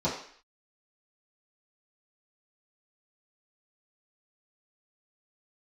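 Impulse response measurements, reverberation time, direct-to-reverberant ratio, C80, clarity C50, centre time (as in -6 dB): 0.55 s, -11.0 dB, 9.0 dB, 5.5 dB, 35 ms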